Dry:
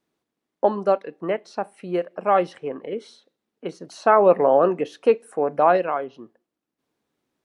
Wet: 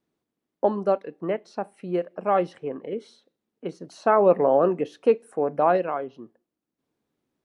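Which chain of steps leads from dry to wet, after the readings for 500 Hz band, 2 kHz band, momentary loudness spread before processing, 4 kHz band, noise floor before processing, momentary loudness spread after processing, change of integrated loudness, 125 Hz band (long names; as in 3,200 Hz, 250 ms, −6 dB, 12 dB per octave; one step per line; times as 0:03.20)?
−2.5 dB, −5.0 dB, 17 LU, can't be measured, −83 dBFS, 16 LU, −3.0 dB, +0.5 dB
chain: low-shelf EQ 470 Hz +7 dB
level −5.5 dB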